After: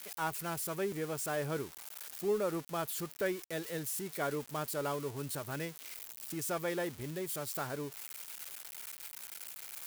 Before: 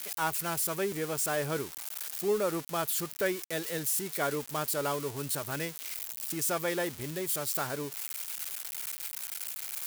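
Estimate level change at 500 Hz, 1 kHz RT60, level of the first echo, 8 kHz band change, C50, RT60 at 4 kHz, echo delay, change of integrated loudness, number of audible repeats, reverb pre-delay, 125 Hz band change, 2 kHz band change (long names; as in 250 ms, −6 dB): −3.5 dB, no reverb audible, no echo audible, −8.0 dB, no reverb audible, no reverb audible, no echo audible, −6.0 dB, no echo audible, no reverb audible, −2.5 dB, −5.5 dB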